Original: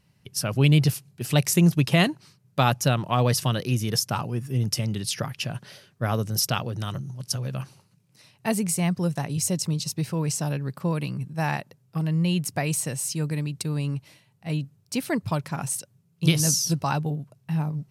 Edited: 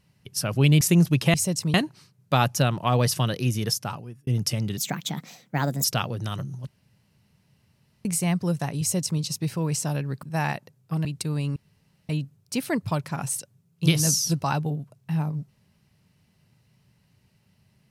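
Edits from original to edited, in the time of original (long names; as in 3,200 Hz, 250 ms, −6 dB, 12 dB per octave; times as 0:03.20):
0:00.81–0:01.47: remove
0:03.88–0:04.53: fade out
0:05.03–0:06.40: play speed 128%
0:07.23–0:08.61: fill with room tone
0:09.37–0:09.77: duplicate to 0:02.00
0:10.79–0:11.27: remove
0:12.09–0:13.45: remove
0:13.96–0:14.49: fill with room tone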